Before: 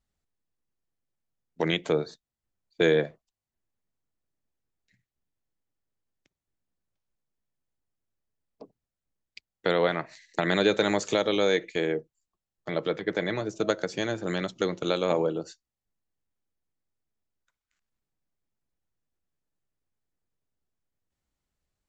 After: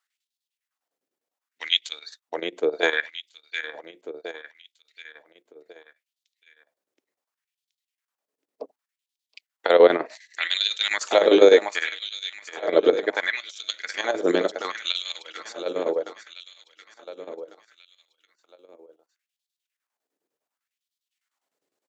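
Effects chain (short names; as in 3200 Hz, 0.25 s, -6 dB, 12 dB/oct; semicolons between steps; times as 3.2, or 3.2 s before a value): bell 270 Hz +7.5 dB 0.52 oct; feedback echo 0.724 s, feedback 49%, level -10 dB; chopper 9.9 Hz, depth 65%, duty 70%; LFO high-pass sine 0.68 Hz 390–3800 Hz; gain +5 dB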